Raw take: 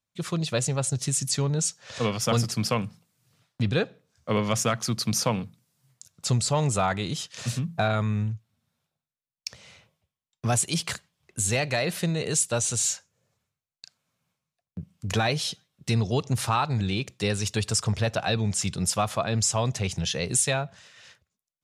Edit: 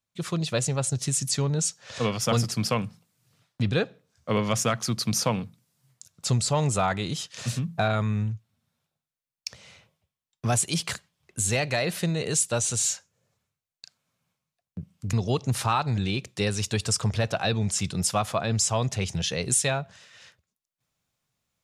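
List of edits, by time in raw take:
15.13–15.96 s: delete

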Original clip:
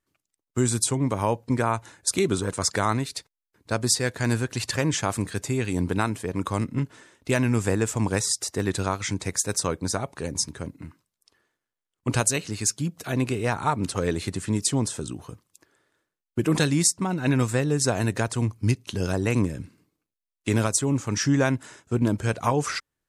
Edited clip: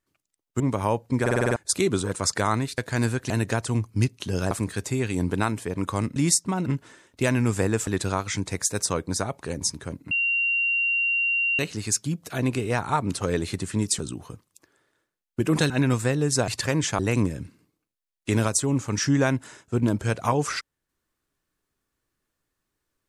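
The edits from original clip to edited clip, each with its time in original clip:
0.60–0.98 s: delete
1.59 s: stutter in place 0.05 s, 7 plays
3.16–4.06 s: delete
4.58–5.09 s: swap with 17.97–19.18 s
7.95–8.61 s: delete
10.85–12.33 s: bleep 2.76 kHz -20.5 dBFS
14.73–14.98 s: delete
16.69–17.19 s: move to 6.74 s

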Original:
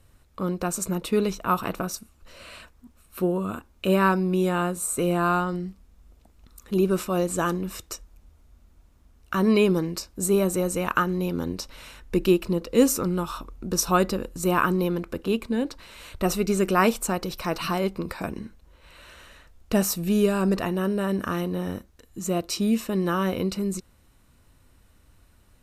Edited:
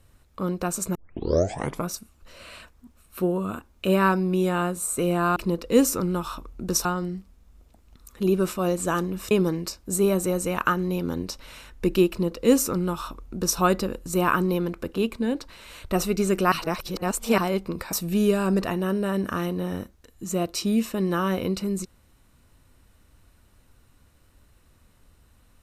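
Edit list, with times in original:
0.95 s: tape start 0.94 s
7.82–9.61 s: delete
12.39–13.88 s: copy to 5.36 s
16.82–17.68 s: reverse
18.23–19.88 s: delete

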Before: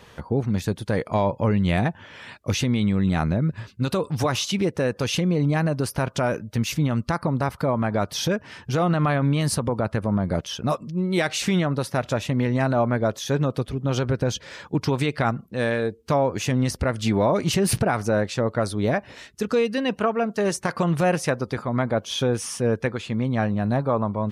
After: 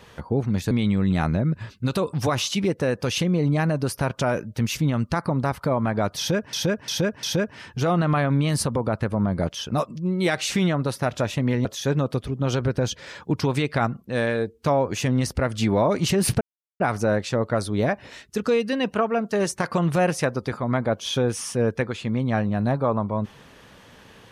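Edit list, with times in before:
0.71–2.68 s: delete
8.15–8.50 s: loop, 4 plays
12.57–13.09 s: delete
17.85 s: insert silence 0.39 s

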